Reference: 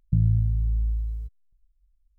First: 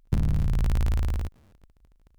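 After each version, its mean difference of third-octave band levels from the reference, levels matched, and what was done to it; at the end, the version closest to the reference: 20.0 dB: cycle switcher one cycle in 3, inverted; dynamic bell 390 Hz, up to -5 dB, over -38 dBFS, Q 0.72; compression, threshold -24 dBFS, peak gain reduction 7 dB; trim +4.5 dB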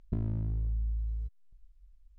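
5.5 dB: one-sided wavefolder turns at -19.5 dBFS; compression 2.5:1, threshold -45 dBFS, peak gain reduction 18 dB; distance through air 68 m; trim +7.5 dB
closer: second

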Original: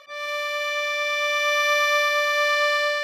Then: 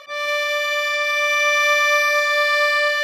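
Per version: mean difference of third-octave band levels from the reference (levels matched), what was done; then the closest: 1.5 dB: in parallel at +2 dB: peak limiter -23 dBFS, peak gain reduction 12 dB; on the sum: two-band feedback delay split 2.4 kHz, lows 167 ms, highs 254 ms, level -9 dB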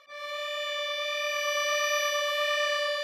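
3.5 dB: flange 1.5 Hz, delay 2.3 ms, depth 6 ms, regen -51%; thinning echo 99 ms, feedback 78%, high-pass 1.2 kHz, level -3 dB; trim -4 dB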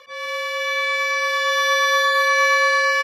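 7.0 dB: frequency shift -48 Hz; delay 486 ms -3.5 dB; trim +1.5 dB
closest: first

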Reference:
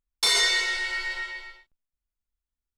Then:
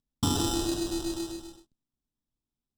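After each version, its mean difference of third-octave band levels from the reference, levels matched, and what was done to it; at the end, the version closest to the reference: 13.5 dB: peaking EQ 440 Hz +9 dB 1.1 oct; peak limiter -17 dBFS, peak gain reduction 5.5 dB; sample-and-hold 20×; graphic EQ 125/250/500/2000/4000/8000 Hz +11/+12/-6/-11/+11/+10 dB; trim -6 dB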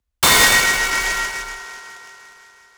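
10.0 dB: dynamic bell 1.2 kHz, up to +8 dB, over -42 dBFS, Q 1; on a send: feedback echo behind a band-pass 178 ms, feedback 72%, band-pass 800 Hz, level -9 dB; on the sum: frequency shift +19 Hz; delay time shaken by noise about 3.8 kHz, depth 0.045 ms; trim +7.5 dB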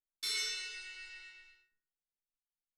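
5.5 dB: Chebyshev band-stop 350–1500 Hz, order 2; bass shelf 140 Hz -9 dB; chord resonator D3 minor, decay 0.28 s; FDN reverb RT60 0.6 s, low-frequency decay 1.2×, high-frequency decay 0.35×, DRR 3.5 dB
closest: third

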